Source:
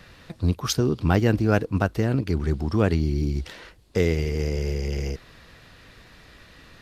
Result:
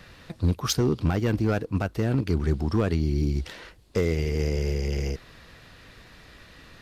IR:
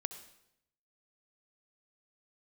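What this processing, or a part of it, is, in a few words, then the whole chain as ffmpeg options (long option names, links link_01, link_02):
limiter into clipper: -af "alimiter=limit=-10.5dB:level=0:latency=1:release=360,asoftclip=type=hard:threshold=-15.5dB"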